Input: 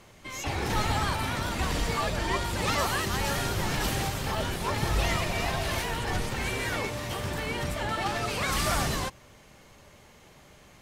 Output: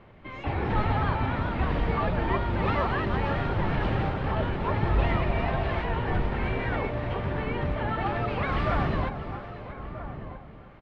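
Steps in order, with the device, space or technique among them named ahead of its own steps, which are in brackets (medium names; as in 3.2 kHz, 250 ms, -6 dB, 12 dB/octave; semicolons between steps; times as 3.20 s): distance through air 100 m; shout across a valley (distance through air 470 m; echo from a far wall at 220 m, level -11 dB); echo whose repeats swap between lows and highs 314 ms, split 990 Hz, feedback 56%, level -9 dB; trim +3.5 dB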